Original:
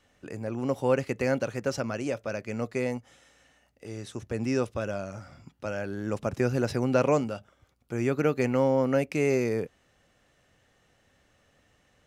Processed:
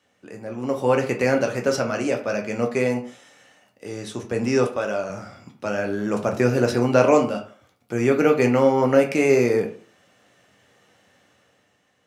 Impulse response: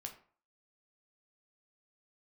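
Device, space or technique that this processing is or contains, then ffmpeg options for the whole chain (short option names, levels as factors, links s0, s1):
far laptop microphone: -filter_complex "[1:a]atrim=start_sample=2205[s0];[0:a][s0]afir=irnorm=-1:irlink=0,highpass=160,dynaudnorm=f=120:g=13:m=2.51,asettb=1/sr,asplit=3[s1][s2][s3];[s1]atrim=end=4.674[s4];[s2]atrim=start=4.67:end=5.1,asetpts=PTS-STARTPTS,afade=t=in:d=0.004:c=qsin,afade=t=out:st=0.426:d=0.004:c=qsin,bass=f=250:g=-9,treble=f=4000:g=-2[s5];[s3]atrim=start=5.096[s6];[s4][s5]acrossfade=d=0.004:c1=hsin:c2=qsin[s7];[s7][s6]acrossfade=d=0.004:c1=qsin:c2=hsin,volume=1.58"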